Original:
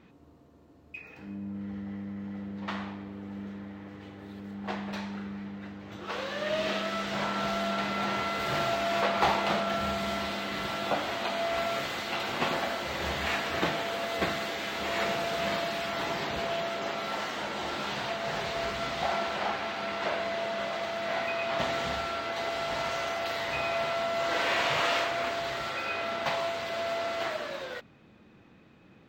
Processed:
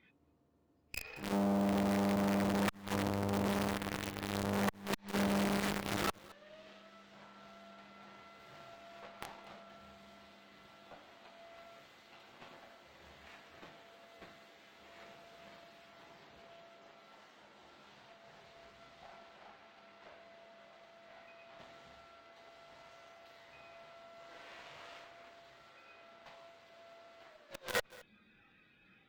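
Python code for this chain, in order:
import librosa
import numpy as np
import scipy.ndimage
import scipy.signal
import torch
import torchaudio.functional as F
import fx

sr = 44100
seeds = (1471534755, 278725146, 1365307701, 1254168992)

p1 = fx.noise_reduce_blind(x, sr, reduce_db=15)
p2 = fx.gate_flip(p1, sr, shuts_db=-26.0, range_db=-26)
p3 = fx.quant_companded(p2, sr, bits=2)
p4 = p2 + F.gain(torch.from_numpy(p3), -4.5).numpy()
p5 = fx.cheby_harmonics(p4, sr, harmonics=(8,), levels_db=(-12,), full_scale_db=-20.5)
p6 = p5 + fx.echo_single(p5, sr, ms=219, db=-24.0, dry=0)
y = fx.transformer_sat(p6, sr, knee_hz=770.0)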